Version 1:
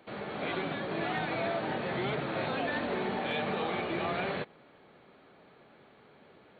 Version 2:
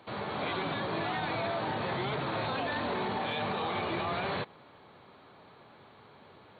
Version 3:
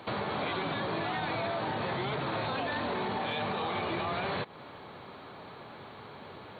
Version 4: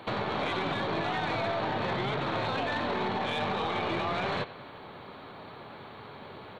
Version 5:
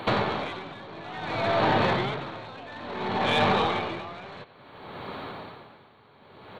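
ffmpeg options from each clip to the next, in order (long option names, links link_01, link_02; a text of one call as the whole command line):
ffmpeg -i in.wav -af "equalizer=frequency=100:width_type=o:width=0.67:gain=10,equalizer=frequency=1000:width_type=o:width=0.67:gain=8,equalizer=frequency=4000:width_type=o:width=0.67:gain=7,alimiter=level_in=1dB:limit=-24dB:level=0:latency=1:release=10,volume=-1dB" out.wav
ffmpeg -i in.wav -af "acompressor=threshold=-40dB:ratio=4,volume=8.5dB" out.wav
ffmpeg -i in.wav -af "aecho=1:1:92|184|276|368|460:0.188|0.0998|0.0529|0.028|0.0149,aeval=exprs='0.0794*(cos(1*acos(clip(val(0)/0.0794,-1,1)))-cos(1*PI/2))+0.00631*(cos(3*acos(clip(val(0)/0.0794,-1,1)))-cos(3*PI/2))+0.00224*(cos(6*acos(clip(val(0)/0.0794,-1,1)))-cos(6*PI/2))':channel_layout=same,volume=3.5dB" out.wav
ffmpeg -i in.wav -af "aeval=exprs='val(0)*pow(10,-20*(0.5-0.5*cos(2*PI*0.58*n/s))/20)':channel_layout=same,volume=9dB" out.wav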